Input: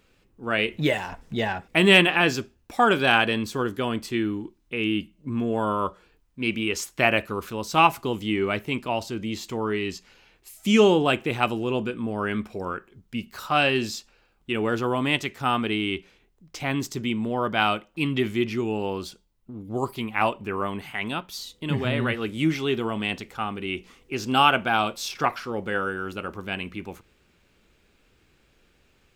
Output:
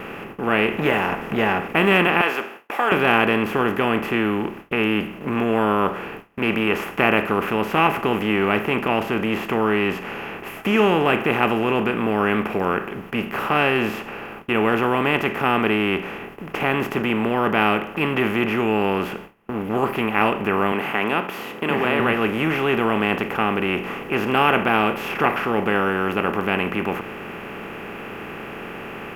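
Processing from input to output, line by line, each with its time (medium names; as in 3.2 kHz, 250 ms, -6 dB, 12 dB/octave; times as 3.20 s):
2.21–2.92 s: Bessel high-pass 820 Hz, order 4
20.72–22.00 s: high-pass 280 Hz
whole clip: spectral levelling over time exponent 0.4; high-order bell 5.5 kHz -14.5 dB; gate with hold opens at -21 dBFS; trim -3.5 dB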